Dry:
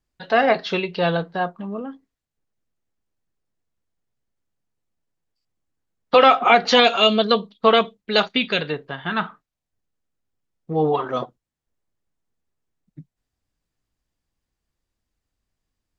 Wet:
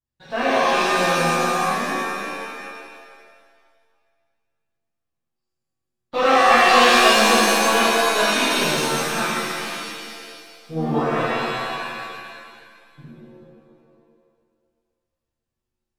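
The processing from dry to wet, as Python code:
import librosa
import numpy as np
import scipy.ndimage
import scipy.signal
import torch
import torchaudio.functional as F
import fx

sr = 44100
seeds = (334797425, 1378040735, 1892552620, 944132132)

p1 = np.where(x < 0.0, 10.0 ** (-3.0 / 20.0) * x, x)
p2 = fx.peak_eq(p1, sr, hz=120.0, db=8.5, octaves=0.77)
p3 = p2 + fx.echo_single(p2, sr, ms=436, db=-12.0, dry=0)
p4 = fx.leveller(p3, sr, passes=1)
p5 = fx.rev_shimmer(p4, sr, seeds[0], rt60_s=1.9, semitones=7, shimmer_db=-2, drr_db=-12.0)
y = p5 * 10.0 ** (-16.5 / 20.0)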